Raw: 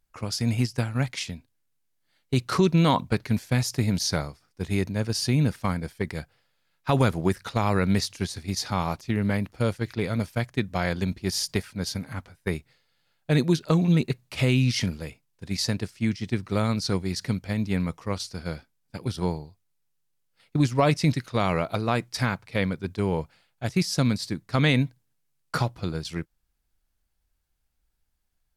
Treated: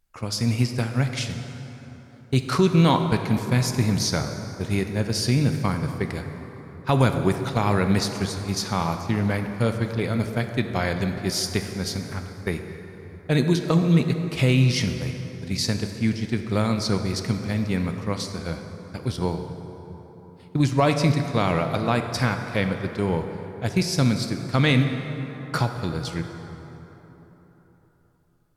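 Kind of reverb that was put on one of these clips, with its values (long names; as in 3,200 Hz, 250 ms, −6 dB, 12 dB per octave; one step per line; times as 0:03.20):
dense smooth reverb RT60 4 s, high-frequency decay 0.5×, DRR 6 dB
level +1.5 dB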